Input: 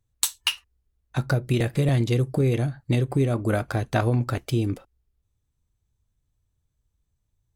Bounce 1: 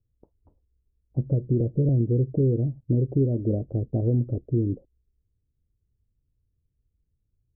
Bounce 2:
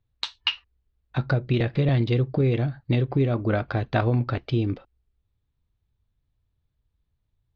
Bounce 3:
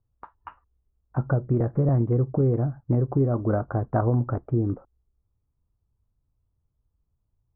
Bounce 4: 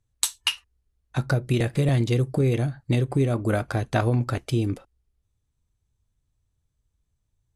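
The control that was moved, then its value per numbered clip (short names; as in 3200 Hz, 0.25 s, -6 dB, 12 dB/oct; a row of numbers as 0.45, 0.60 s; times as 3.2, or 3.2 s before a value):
steep low-pass, frequency: 510, 4500, 1300, 12000 Hz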